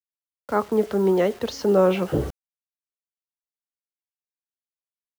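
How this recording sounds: tremolo triangle 0.51 Hz, depth 60%; a quantiser's noise floor 8-bit, dither none

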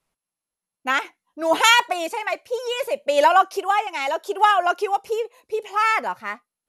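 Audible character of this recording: tremolo triangle 0.71 Hz, depth 45%; MP2

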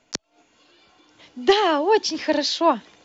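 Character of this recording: noise floor -65 dBFS; spectral tilt -2.0 dB/oct

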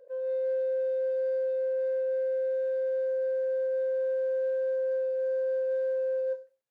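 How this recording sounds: noise floor -52 dBFS; spectral tilt -4.5 dB/oct

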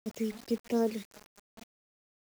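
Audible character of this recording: phasing stages 12, 2.8 Hz, lowest notch 790–2900 Hz; a quantiser's noise floor 8-bit, dither none

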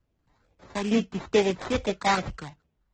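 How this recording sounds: phasing stages 12, 2.3 Hz, lowest notch 470–1500 Hz; aliases and images of a low sample rate 2900 Hz, jitter 20%; AAC

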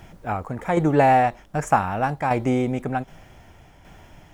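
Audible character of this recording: tremolo saw down 1.3 Hz, depth 55%

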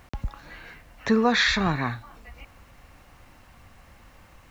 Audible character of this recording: a quantiser's noise floor 10-bit, dither none

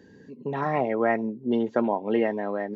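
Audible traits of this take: noise floor -52 dBFS; spectral tilt -3.0 dB/oct

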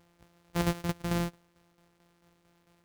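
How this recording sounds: a buzz of ramps at a fixed pitch in blocks of 256 samples; tremolo saw down 4.5 Hz, depth 60%; a quantiser's noise floor 12-bit, dither none

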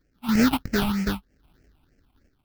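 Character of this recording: random-step tremolo 3.5 Hz; aliases and images of a low sample rate 1100 Hz, jitter 20%; phasing stages 6, 3.2 Hz, lowest notch 460–1000 Hz

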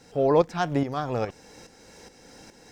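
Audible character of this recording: a quantiser's noise floor 12-bit, dither triangular; tremolo saw up 2.4 Hz, depth 65%; Opus

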